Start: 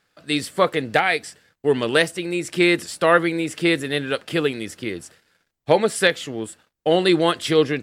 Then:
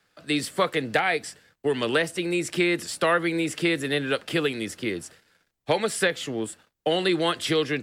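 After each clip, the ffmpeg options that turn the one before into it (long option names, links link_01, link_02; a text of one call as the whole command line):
ffmpeg -i in.wav -filter_complex "[0:a]acrossover=split=250|830|3100[link_01][link_02][link_03][link_04];[link_04]alimiter=limit=-21dB:level=0:latency=1:release=38[link_05];[link_01][link_02][link_03][link_05]amix=inputs=4:normalize=0,acrossover=split=110|1300[link_06][link_07][link_08];[link_06]acompressor=threshold=-50dB:ratio=4[link_09];[link_07]acompressor=threshold=-22dB:ratio=4[link_10];[link_08]acompressor=threshold=-24dB:ratio=4[link_11];[link_09][link_10][link_11]amix=inputs=3:normalize=0" out.wav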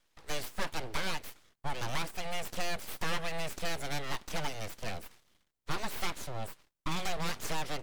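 ffmpeg -i in.wav -af "aeval=exprs='abs(val(0))':channel_layout=same,aeval=exprs='(tanh(4.47*val(0)+0.55)-tanh(0.55))/4.47':channel_layout=same,volume=-2dB" out.wav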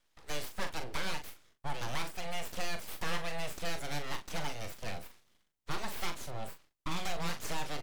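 ffmpeg -i in.wav -filter_complex "[0:a]asplit=2[link_01][link_02];[link_02]adelay=41,volume=-8dB[link_03];[link_01][link_03]amix=inputs=2:normalize=0,volume=-2.5dB" out.wav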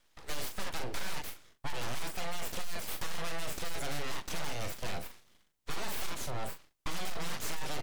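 ffmpeg -i in.wav -af "aeval=exprs='clip(val(0),-1,0.0224)':channel_layout=same,volume=5.5dB" out.wav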